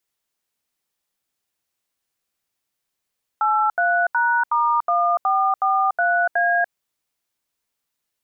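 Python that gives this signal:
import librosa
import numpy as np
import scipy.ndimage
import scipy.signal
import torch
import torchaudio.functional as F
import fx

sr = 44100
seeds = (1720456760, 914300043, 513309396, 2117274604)

y = fx.dtmf(sr, digits='83#*1443A', tone_ms=290, gap_ms=78, level_db=-18.5)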